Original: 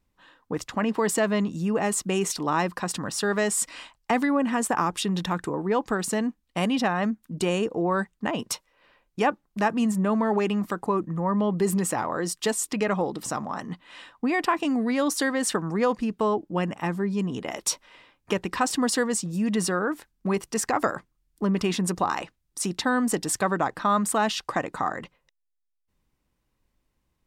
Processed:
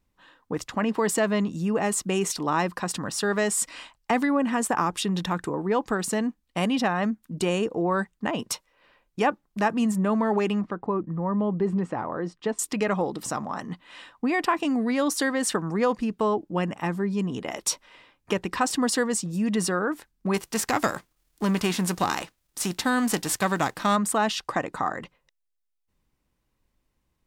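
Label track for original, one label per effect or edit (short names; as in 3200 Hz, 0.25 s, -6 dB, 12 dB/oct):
10.610000	12.590000	tape spacing loss at 10 kHz 35 dB
20.330000	23.950000	spectral whitening exponent 0.6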